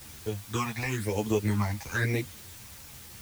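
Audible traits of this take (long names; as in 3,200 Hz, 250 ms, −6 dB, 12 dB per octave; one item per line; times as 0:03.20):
phaser sweep stages 8, 1 Hz, lowest notch 390–1,600 Hz
a quantiser's noise floor 8 bits, dither triangular
a shimmering, thickened sound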